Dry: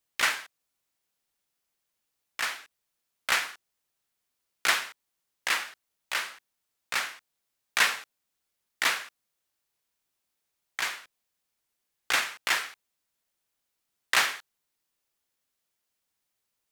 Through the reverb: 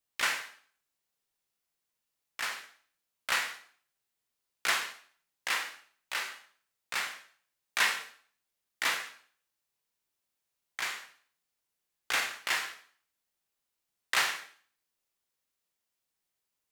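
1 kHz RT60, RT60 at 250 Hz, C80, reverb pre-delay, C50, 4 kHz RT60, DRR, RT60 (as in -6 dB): 0.50 s, 0.50 s, 13.5 dB, 18 ms, 9.5 dB, 0.50 s, 4.0 dB, 0.50 s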